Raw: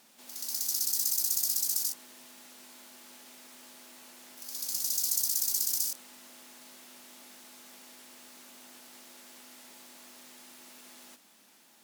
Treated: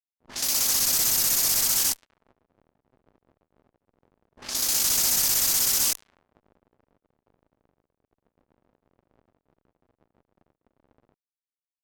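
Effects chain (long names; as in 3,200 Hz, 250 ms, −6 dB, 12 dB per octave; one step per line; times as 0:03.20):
fuzz pedal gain 50 dB, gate −43 dBFS
low-pass that shuts in the quiet parts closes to 560 Hz, open at −15 dBFS
level −6 dB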